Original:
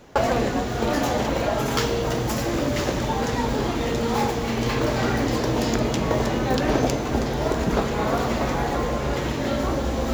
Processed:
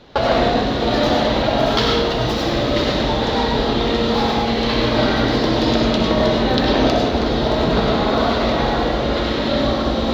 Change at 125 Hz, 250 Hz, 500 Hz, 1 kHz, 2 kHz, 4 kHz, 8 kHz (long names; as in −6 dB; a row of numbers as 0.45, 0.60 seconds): +3.0, +6.0, +6.0, +5.5, +5.5, +11.0, −4.0 decibels